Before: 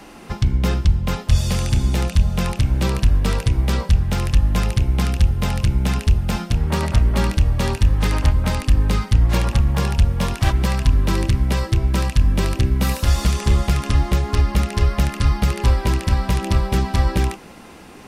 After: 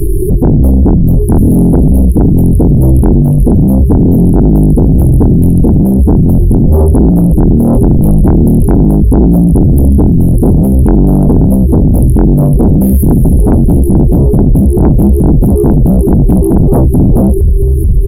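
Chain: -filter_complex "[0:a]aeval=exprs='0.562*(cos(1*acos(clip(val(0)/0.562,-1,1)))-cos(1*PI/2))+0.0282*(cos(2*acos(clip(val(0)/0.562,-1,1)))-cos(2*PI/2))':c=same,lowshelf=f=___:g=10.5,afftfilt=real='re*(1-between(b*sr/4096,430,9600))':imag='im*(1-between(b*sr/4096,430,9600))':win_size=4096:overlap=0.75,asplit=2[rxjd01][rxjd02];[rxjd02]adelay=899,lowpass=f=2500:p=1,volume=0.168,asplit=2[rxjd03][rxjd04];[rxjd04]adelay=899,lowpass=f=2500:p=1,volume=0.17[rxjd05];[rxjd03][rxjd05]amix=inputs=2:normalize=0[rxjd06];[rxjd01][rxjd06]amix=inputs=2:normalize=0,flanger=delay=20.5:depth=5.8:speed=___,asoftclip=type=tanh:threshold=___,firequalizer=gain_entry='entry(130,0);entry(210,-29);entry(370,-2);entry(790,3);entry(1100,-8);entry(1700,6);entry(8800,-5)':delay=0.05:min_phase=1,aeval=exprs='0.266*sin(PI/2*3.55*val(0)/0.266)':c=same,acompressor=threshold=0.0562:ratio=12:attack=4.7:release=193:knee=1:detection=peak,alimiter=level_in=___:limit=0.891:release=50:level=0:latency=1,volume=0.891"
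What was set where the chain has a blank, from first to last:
94, 0.43, 0.2, 21.1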